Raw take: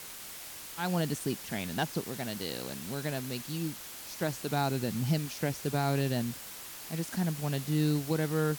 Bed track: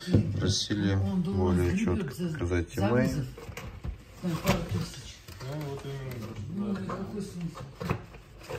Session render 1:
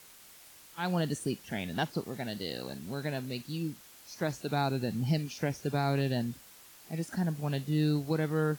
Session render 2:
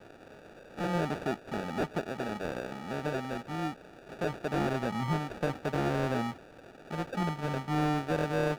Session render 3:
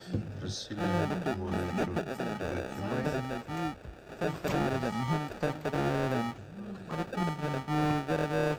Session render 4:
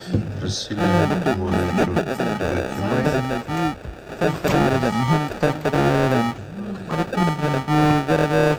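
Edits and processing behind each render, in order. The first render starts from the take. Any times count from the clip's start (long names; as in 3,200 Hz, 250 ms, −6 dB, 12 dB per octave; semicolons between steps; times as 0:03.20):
noise reduction from a noise print 10 dB
decimation without filtering 42×; mid-hump overdrive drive 15 dB, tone 1,500 Hz, clips at −17.5 dBFS
mix in bed track −10 dB
level +12 dB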